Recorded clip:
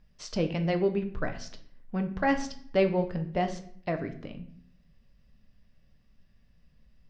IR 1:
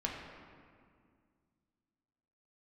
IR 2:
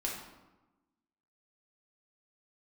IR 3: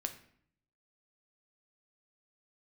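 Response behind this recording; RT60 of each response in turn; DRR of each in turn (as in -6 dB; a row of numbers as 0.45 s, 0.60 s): 3; 2.1 s, 1.1 s, 0.60 s; -2.5 dB, -3.0 dB, 6.0 dB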